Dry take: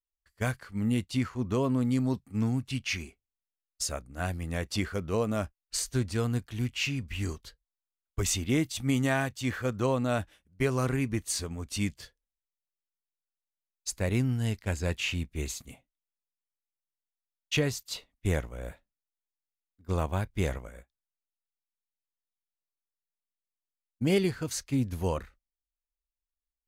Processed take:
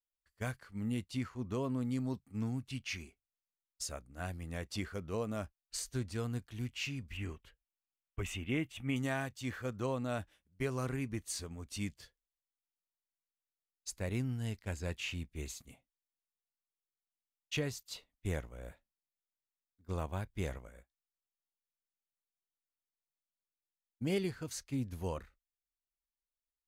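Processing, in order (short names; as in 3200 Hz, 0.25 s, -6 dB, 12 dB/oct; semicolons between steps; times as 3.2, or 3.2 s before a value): 7.17–8.96 resonant high shelf 3500 Hz -8 dB, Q 3; gain -8.5 dB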